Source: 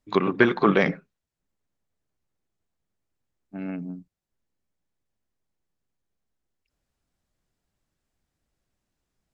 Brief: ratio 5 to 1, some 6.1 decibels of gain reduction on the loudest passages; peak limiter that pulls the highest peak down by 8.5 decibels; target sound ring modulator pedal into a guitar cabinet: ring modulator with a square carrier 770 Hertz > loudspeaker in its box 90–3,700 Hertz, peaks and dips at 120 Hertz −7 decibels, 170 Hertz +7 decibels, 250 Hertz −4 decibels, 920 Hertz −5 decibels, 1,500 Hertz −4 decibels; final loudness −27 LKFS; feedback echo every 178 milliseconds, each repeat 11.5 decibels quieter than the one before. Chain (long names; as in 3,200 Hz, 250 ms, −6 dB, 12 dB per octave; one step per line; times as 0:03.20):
downward compressor 5 to 1, threshold −20 dBFS
brickwall limiter −17 dBFS
repeating echo 178 ms, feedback 27%, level −11.5 dB
ring modulator with a square carrier 770 Hz
loudspeaker in its box 90–3,700 Hz, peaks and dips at 120 Hz −7 dB, 170 Hz +7 dB, 250 Hz −4 dB, 920 Hz −5 dB, 1,500 Hz −4 dB
level +5.5 dB